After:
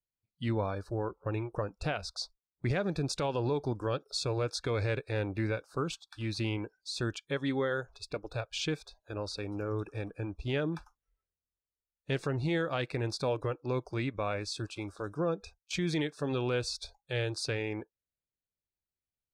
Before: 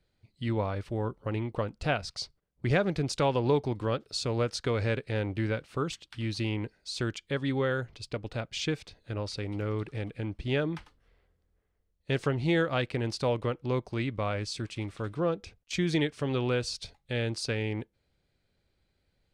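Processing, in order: spectral noise reduction 25 dB; peak limiter -21 dBFS, peak gain reduction 7 dB; trim -1 dB

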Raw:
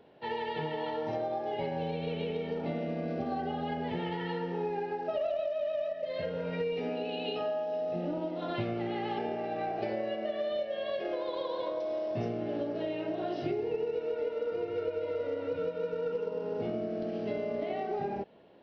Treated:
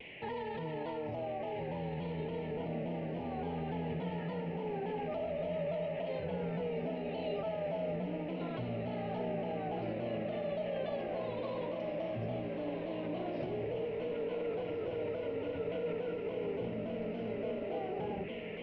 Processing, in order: band noise 1.9–3 kHz -48 dBFS; tilt EQ -3 dB/octave; peak limiter -31.5 dBFS, peak gain reduction 15.5 dB; hum notches 50/100/150/200/250/300/350 Hz; echo that smears into a reverb 1552 ms, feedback 70%, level -7 dB; vibrato with a chosen wave saw down 3.5 Hz, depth 100 cents

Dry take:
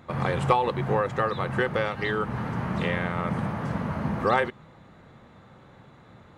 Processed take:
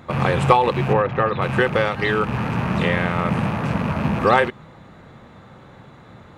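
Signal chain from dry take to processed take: rattle on loud lows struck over -34 dBFS, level -31 dBFS; 0.93–1.42 s: distance through air 260 m; trim +7 dB

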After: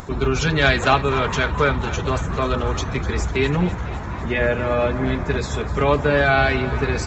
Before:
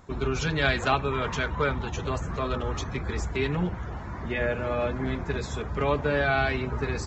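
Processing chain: upward compressor, threshold -36 dBFS; on a send: thinning echo 250 ms, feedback 72%, level -15 dB; on the sum: trim +7.5 dB

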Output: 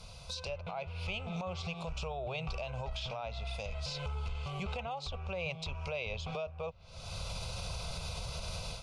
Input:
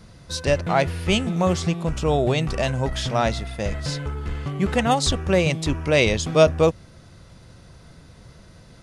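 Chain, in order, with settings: ten-band graphic EQ 125 Hz -5 dB, 250 Hz -7 dB, 2 kHz +4 dB, 4 kHz +5 dB; low-pass that closes with the level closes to 2.5 kHz, closed at -19 dBFS; level rider gain up to 16 dB; static phaser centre 750 Hz, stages 4; compression 6:1, threshold -35 dBFS, peak gain reduction 24.5 dB; peak limiter -30.5 dBFS, peak gain reduction 9 dB; peaking EQ 2.5 kHz +10 dB 0.29 oct

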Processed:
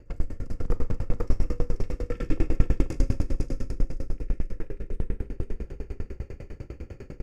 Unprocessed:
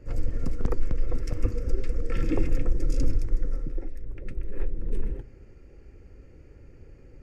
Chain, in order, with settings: reverse; upward compressor, threshold -24 dBFS; reverse; feedback delay 485 ms, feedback 44%, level -3.5 dB; Schroeder reverb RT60 1.9 s, combs from 31 ms, DRR -1 dB; sawtooth tremolo in dB decaying 10 Hz, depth 28 dB; trim +2 dB

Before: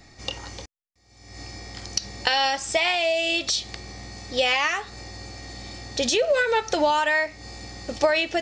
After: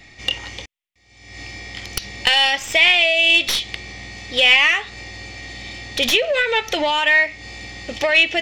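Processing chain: tracing distortion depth 0.069 ms; saturation -13 dBFS, distortion -21 dB; high-order bell 2.6 kHz +11 dB 1.1 oct; trim +1.5 dB

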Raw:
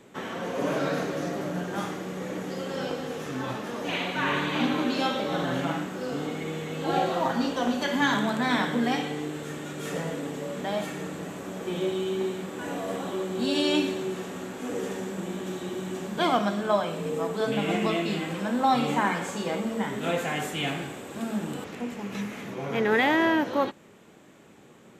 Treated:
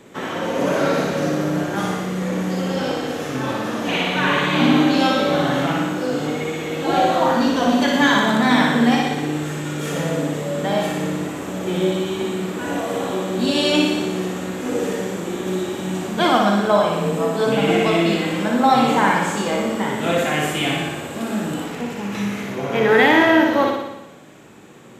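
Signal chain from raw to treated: flutter echo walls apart 10.2 m, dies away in 0.97 s; trim +6.5 dB

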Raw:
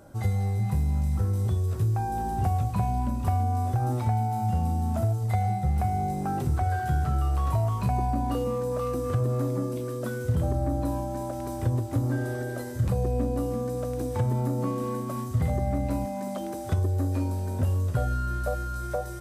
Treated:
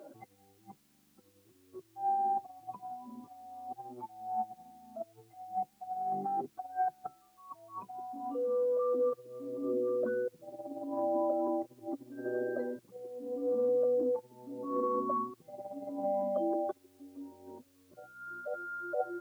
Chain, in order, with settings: spectral contrast enhancement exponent 1.9; peaking EQ 1.1 kHz +5.5 dB 0.23 oct; compressor with a negative ratio -30 dBFS, ratio -0.5; high-pass 310 Hz 24 dB/octave; tape spacing loss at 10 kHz 31 dB; word length cut 12-bit, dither triangular; trim +1 dB

